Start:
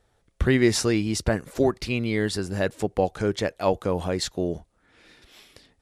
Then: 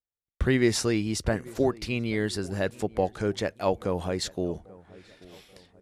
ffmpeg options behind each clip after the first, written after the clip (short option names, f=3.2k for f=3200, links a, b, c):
-filter_complex "[0:a]asplit=2[a][b];[b]adelay=835,lowpass=f=1.5k:p=1,volume=-21dB,asplit=2[c][d];[d]adelay=835,lowpass=f=1.5k:p=1,volume=0.46,asplit=2[e][f];[f]adelay=835,lowpass=f=1.5k:p=1,volume=0.46[g];[a][c][e][g]amix=inputs=4:normalize=0,agate=range=-35dB:threshold=-56dB:ratio=16:detection=peak,volume=-3dB"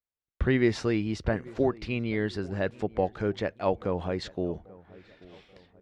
-af "lowpass=3.2k,volume=-1dB"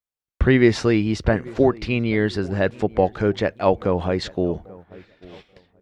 -af "agate=range=-9dB:threshold=-51dB:ratio=16:detection=peak,volume=8.5dB"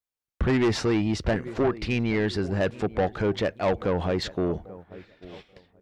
-af "asoftclip=type=tanh:threshold=-17dB,volume=-1dB"